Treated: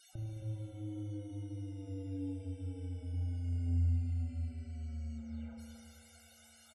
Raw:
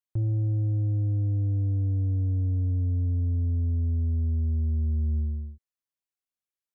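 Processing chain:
linear delta modulator 64 kbit/s, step −42 dBFS
low-shelf EQ 330 Hz −7.5 dB
comb filter 1.4 ms, depth 64%
downward compressor 4 to 1, threshold −34 dBFS, peak gain reduction 5.5 dB
surface crackle 320 per second −44 dBFS
spectral peaks only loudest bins 32
hollow resonant body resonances 300/470 Hz, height 14 dB, ringing for 55 ms
flanger 1.8 Hz, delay 2.5 ms, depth 3.9 ms, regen −71%
repeating echo 268 ms, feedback 48%, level −11 dB
spring reverb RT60 2.9 s, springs 35 ms, chirp 80 ms, DRR 0 dB
level −3 dB

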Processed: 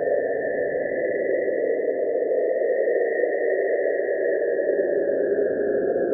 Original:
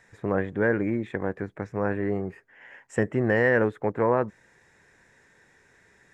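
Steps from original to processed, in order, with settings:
expanding power law on the bin magnitudes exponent 3.4
high-pass filter 280 Hz 24 dB per octave
all-pass dispersion highs, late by 77 ms, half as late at 2,000 Hz
random phases in short frames
extreme stretch with random phases 22×, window 0.10 s, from 0:03.34

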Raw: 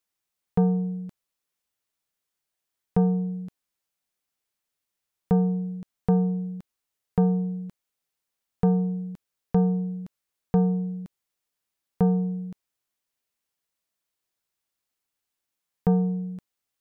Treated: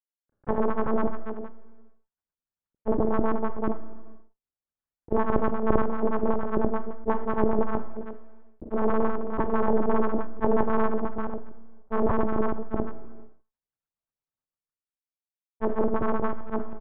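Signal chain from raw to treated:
sub-harmonics by changed cycles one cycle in 2, inverted
low-shelf EQ 76 Hz −12 dB
single-tap delay 357 ms −13 dB
harmonic generator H 2 −11 dB, 5 −13 dB, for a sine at −11.5 dBFS
noise gate −37 dBFS, range −46 dB
brickwall limiter −18.5 dBFS, peak gain reduction 10.5 dB
auto-filter low-pass sine 9 Hz 420–1,500 Hz
one-pitch LPC vocoder at 8 kHz 220 Hz
granular cloud, grains 20 per second, spray 304 ms, pitch spread up and down by 0 semitones
dynamic equaliser 1,100 Hz, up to +7 dB, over −48 dBFS, Q 2
four-comb reverb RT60 0.52 s, combs from 27 ms, DRR 20 dB
level that may fall only so fast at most 32 dB per second

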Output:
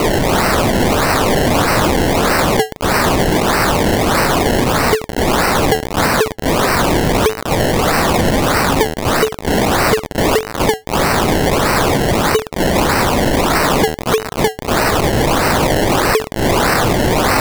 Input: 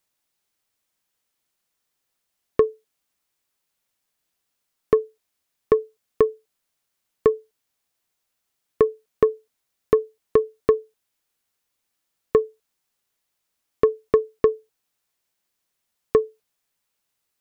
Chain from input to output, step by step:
spike at every zero crossing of −12.5 dBFS
low-shelf EQ 140 Hz −7 dB
sample-and-hold swept by an LFO 25×, swing 100% 1.6 Hz
level +2.5 dB

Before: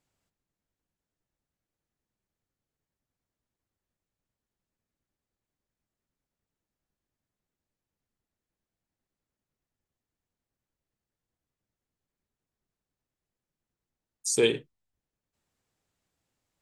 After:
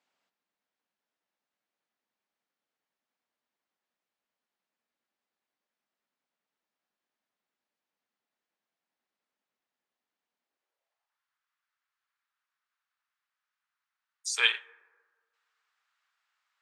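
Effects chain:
high-pass filter sweep 220 Hz → 1,300 Hz, 0:10.41–0:11.25
three-way crossover with the lows and the highs turned down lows −19 dB, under 590 Hz, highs −16 dB, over 5,100 Hz
dense smooth reverb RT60 1.6 s, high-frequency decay 0.3×, DRR 19 dB
level +4.5 dB

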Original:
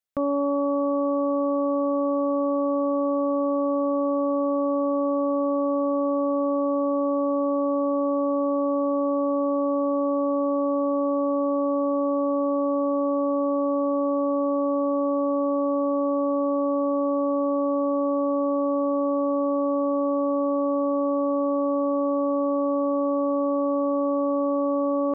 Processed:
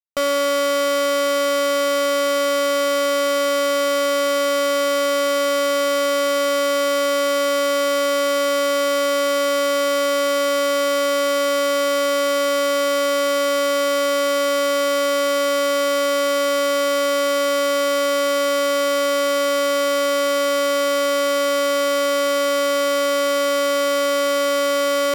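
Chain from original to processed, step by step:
high-pass filter 660 Hz 6 dB per octave
fuzz pedal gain 60 dB, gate −57 dBFS
level −5 dB

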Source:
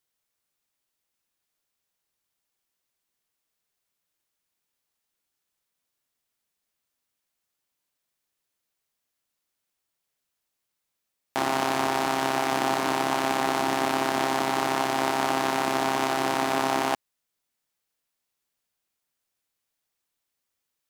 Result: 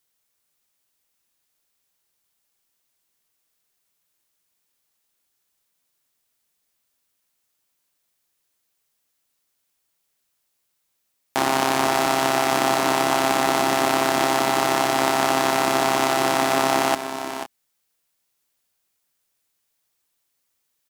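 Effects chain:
high-shelf EQ 5,300 Hz +4.5 dB
multi-tap delay 486/513 ms −10.5/−17.5 dB
level +4.5 dB

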